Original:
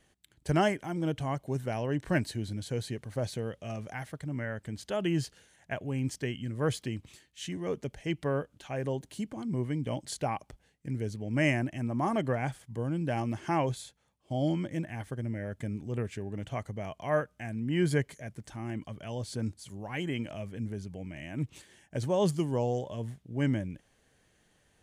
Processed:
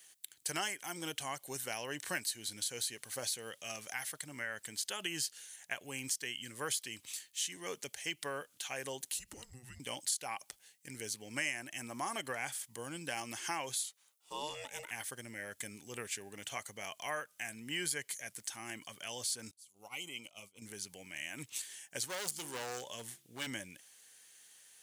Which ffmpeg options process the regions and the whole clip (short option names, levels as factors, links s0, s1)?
-filter_complex "[0:a]asettb=1/sr,asplit=3[s0][s1][s2];[s0]atrim=end=9.144[s3];[s1]atrim=start=9.14:end=9.8,asetpts=PTS-STARTPTS,afade=t=in:d=0.004:c=qsin,afade=t=out:st=0.656:d=0.004:c=qsin,lowshelf=f=710:t=q:w=1.5:g=9,acompressor=threshold=0.0355:ratio=5:attack=3.2:release=140:knee=1:detection=peak,afreqshift=-250[s4];[s2]atrim=start=9.796[s5];[s3][s4]acrossfade=d=0.004:c1=hsin:c2=qsin[s6];[s6][s5]acrossfade=d=0.004:c1=qsin:c2=hsin,asettb=1/sr,asplit=3[s7][s8][s9];[s7]atrim=end=13.834[s10];[s8]atrim=start=13.83:end=14.91,asetpts=PTS-STARTPTS,afade=t=in:d=0.004:c=qsin,afade=t=out:st=1.076:d=0.004:c=qsin,highpass=170,aeval=exprs='val(0)*sin(2*PI*300*n/s)':c=same[s11];[s9]atrim=start=14.906[s12];[s10][s11]acrossfade=d=0.004:c1=hsin:c2=qsin[s13];[s13][s12]acrossfade=d=0.004:c1=qsin:c2=hsin,asettb=1/sr,asplit=3[s14][s15][s16];[s14]atrim=end=19.514[s17];[s15]atrim=start=19.51:end=20.62,asetpts=PTS-STARTPTS,afade=t=in:d=0.004:c=qsin,afade=t=out:st=1.106:d=0.004:c=qsin,agate=range=0.0708:threshold=0.01:ratio=16:release=100:detection=peak,acompressor=threshold=0.0112:ratio=3:attack=3.2:release=140:knee=1:detection=peak,asuperstop=centerf=1700:order=4:qfactor=2.2[s18];[s16]atrim=start=20.616[s19];[s17][s18]acrossfade=d=0.004:c1=hsin:c2=qsin[s20];[s20][s19]acrossfade=d=0.004:c1=qsin:c2=hsin,asettb=1/sr,asplit=3[s21][s22][s23];[s21]atrim=end=22.054[s24];[s22]atrim=start=22.05:end=23.47,asetpts=PTS-STARTPTS,afade=t=in:d=0.004:c=qsin,afade=t=out:st=1.416:d=0.004:c=qsin,bandreject=f=68.6:t=h:w=4,bandreject=f=137.2:t=h:w=4,bandreject=f=205.8:t=h:w=4,bandreject=f=274.4:t=h:w=4,bandreject=f=343:t=h:w=4,asoftclip=type=hard:threshold=0.0316[s25];[s23]atrim=start=23.466[s26];[s24][s25]acrossfade=d=0.004:c1=hsin:c2=qsin[s27];[s27][s26]acrossfade=d=0.004:c1=qsin:c2=hsin,aderivative,acompressor=threshold=0.00316:ratio=3,bandreject=f=630:w=12,volume=5.62"